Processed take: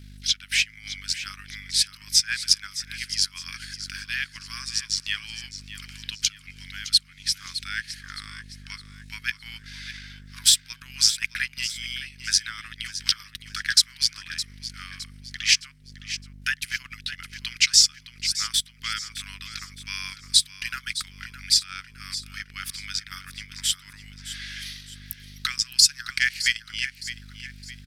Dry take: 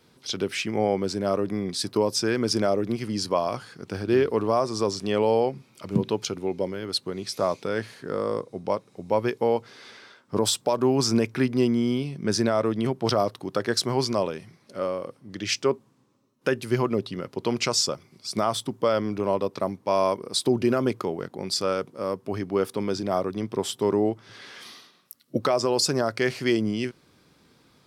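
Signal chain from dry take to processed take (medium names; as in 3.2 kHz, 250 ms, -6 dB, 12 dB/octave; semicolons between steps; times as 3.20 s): steep high-pass 1.6 kHz 48 dB/octave; hum 50 Hz, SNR 15 dB; transient shaper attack +1 dB, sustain -11 dB; feedback delay 613 ms, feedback 40%, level -13 dB; trim +8 dB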